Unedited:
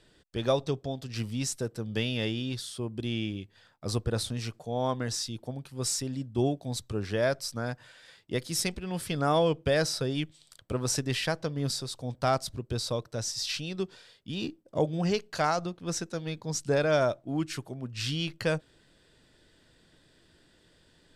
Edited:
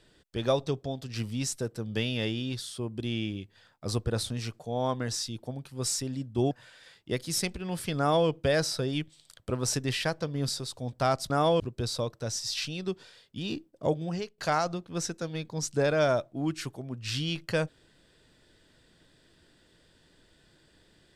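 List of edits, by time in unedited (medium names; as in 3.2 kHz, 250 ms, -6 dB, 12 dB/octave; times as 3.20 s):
6.51–7.73 s: delete
9.20–9.50 s: copy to 12.52 s
14.79–15.30 s: fade out, to -16.5 dB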